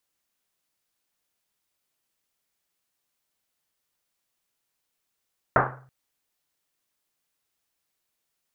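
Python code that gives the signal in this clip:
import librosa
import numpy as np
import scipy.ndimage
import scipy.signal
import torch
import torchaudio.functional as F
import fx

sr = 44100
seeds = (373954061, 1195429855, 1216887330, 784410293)

y = fx.risset_drum(sr, seeds[0], length_s=0.33, hz=130.0, decay_s=0.69, noise_hz=990.0, noise_width_hz=1200.0, noise_pct=75)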